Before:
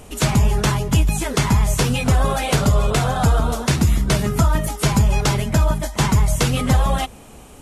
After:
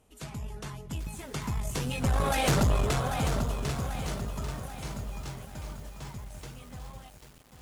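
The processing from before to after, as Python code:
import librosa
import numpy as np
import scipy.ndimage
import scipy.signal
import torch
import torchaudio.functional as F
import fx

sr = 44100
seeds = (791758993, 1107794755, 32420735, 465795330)

y = fx.doppler_pass(x, sr, speed_mps=7, closest_m=1.5, pass_at_s=2.51)
y = fx.tube_stage(y, sr, drive_db=20.0, bias=0.55)
y = fx.echo_crushed(y, sr, ms=792, feedback_pct=55, bits=8, wet_db=-7.5)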